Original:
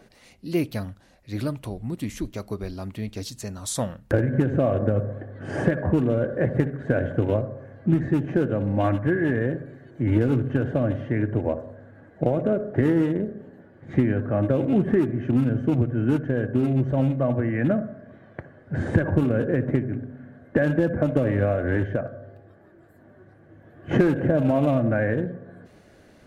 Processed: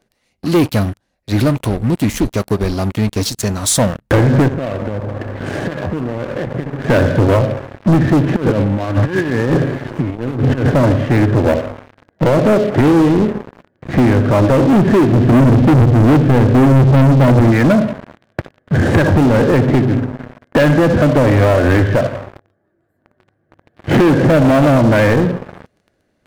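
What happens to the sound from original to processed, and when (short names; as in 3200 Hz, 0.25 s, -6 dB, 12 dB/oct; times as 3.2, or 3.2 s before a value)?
4.48–6.84 compressor, threshold -34 dBFS
8.36–10.7 negative-ratio compressor -28 dBFS, ratio -0.5
15.11–17.52 tilt shelf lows +8 dB, about 780 Hz
whole clip: sample leveller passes 5; gain -2 dB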